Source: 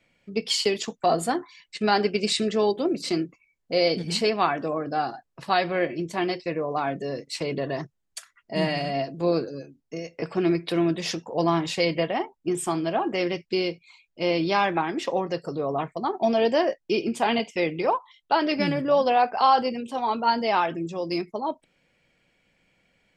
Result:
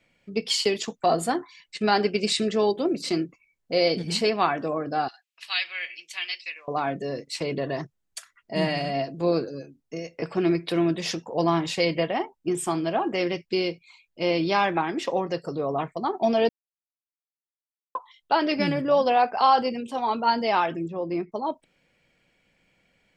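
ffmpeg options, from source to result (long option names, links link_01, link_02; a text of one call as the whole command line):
ffmpeg -i in.wav -filter_complex "[0:a]asettb=1/sr,asplit=3[link_01][link_02][link_03];[link_01]atrim=end=5.084[link_04];[link_02]atrim=start=5.08:end=6.68,asetpts=PTS-STARTPTS,afade=type=in:duration=0.004:curve=qsin,afade=type=out:start_time=1.596:duration=0.004:curve=qsin,highpass=frequency=2600:width_type=q:width=2.3[link_05];[link_03]atrim=start=6.676[link_06];[link_04][link_05]acrossfade=duration=0.004:curve1=hsin:curve2=qsin[link_07];[link_07][link_06]acrossfade=duration=0.004:curve1=qsin:curve2=hsin,asettb=1/sr,asplit=3[link_08][link_09][link_10];[link_08]atrim=end=20.884[link_11];[link_09]atrim=start=20.88:end=21.32,asetpts=PTS-STARTPTS,afade=type=in:duration=0.004:curve=qsin,afade=type=out:start_time=0.436:duration=0.004:curve=qsin,lowpass=1700[link_12];[link_10]atrim=start=21.316[link_13];[link_11][link_12]acrossfade=duration=0.004:curve1=hsin:curve2=qsin[link_14];[link_14][link_13]acrossfade=duration=0.004:curve1=qsin:curve2=hsin,asplit=3[link_15][link_16][link_17];[link_15]atrim=end=16.49,asetpts=PTS-STARTPTS,afade=type=out:start_time=16.486:duration=0.004:curve=hsin[link_18];[link_16]atrim=start=16.49:end=17.95,asetpts=PTS-STARTPTS,volume=0[link_19];[link_17]atrim=start=17.95,asetpts=PTS-STARTPTS,afade=type=in:duration=0.004:curve=hsin[link_20];[link_18][link_19][link_20]concat=n=3:v=0:a=1" out.wav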